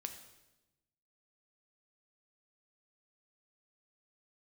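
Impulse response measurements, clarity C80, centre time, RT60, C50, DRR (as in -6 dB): 11.0 dB, 17 ms, 1.0 s, 9.0 dB, 6.0 dB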